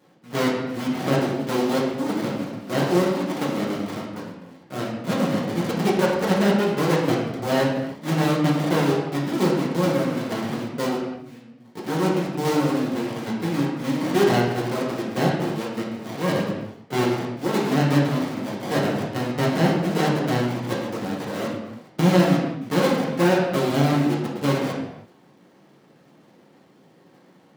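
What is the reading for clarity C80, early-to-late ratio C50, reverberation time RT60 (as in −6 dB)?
4.5 dB, 2.0 dB, non-exponential decay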